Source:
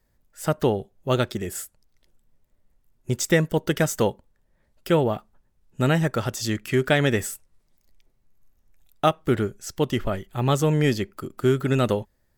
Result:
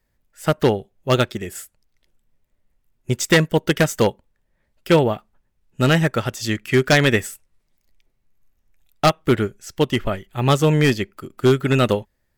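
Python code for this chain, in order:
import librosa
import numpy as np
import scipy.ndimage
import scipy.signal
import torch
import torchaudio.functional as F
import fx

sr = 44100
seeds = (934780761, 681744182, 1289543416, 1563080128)

y = fx.peak_eq(x, sr, hz=2400.0, db=5.0, octaves=1.2)
y = 10.0 ** (-12.0 / 20.0) * (np.abs((y / 10.0 ** (-12.0 / 20.0) + 3.0) % 4.0 - 2.0) - 1.0)
y = fx.upward_expand(y, sr, threshold_db=-33.0, expansion=1.5)
y = y * 10.0 ** (6.0 / 20.0)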